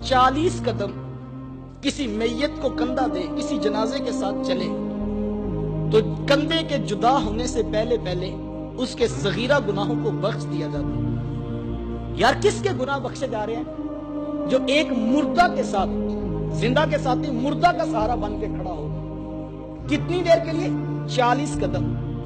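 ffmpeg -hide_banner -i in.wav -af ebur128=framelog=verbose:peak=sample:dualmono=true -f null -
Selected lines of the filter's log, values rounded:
Integrated loudness:
  I:         -20.2 LUFS
  Threshold: -30.4 LUFS
Loudness range:
  LRA:         3.1 LU
  Threshold: -40.4 LUFS
  LRA low:   -21.7 LUFS
  LRA high:  -18.6 LUFS
Sample peak:
  Peak:       -8.4 dBFS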